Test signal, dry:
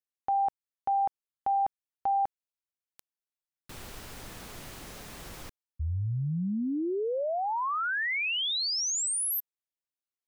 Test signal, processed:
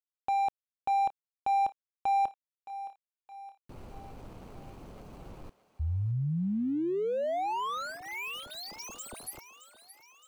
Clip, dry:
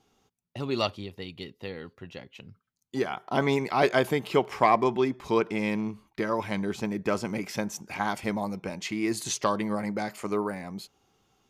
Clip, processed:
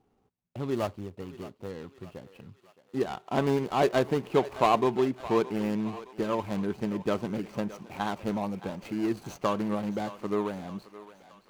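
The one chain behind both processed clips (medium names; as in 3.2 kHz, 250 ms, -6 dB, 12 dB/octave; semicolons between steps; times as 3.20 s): median filter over 25 samples; on a send: thinning echo 618 ms, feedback 58%, high-pass 560 Hz, level -14 dB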